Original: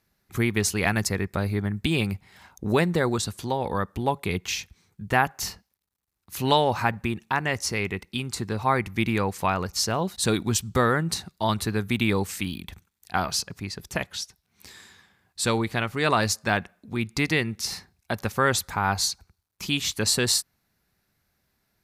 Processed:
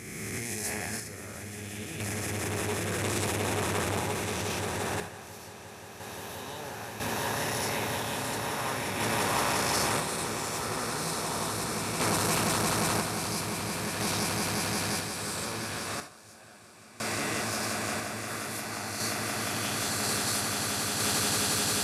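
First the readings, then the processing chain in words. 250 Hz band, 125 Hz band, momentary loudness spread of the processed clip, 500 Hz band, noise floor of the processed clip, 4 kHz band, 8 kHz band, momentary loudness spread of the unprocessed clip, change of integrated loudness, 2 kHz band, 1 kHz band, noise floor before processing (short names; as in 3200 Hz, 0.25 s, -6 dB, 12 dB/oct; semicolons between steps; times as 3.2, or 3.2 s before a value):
-7.0 dB, -7.0 dB, 12 LU, -6.0 dB, -46 dBFS, -3.0 dB, +0.5 dB, 10 LU, -4.5 dB, -4.0 dB, -4.5 dB, -76 dBFS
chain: spectral swells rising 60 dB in 1.89 s; bell 11000 Hz +9 dB 0.61 oct; limiter -10 dBFS, peak gain reduction 9.5 dB; HPF 60 Hz; swelling echo 0.176 s, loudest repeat 8, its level -6.5 dB; random-step tremolo 1 Hz, depth 95%; non-linear reverb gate 0.1 s flat, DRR 7 dB; core saturation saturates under 1100 Hz; gain -8.5 dB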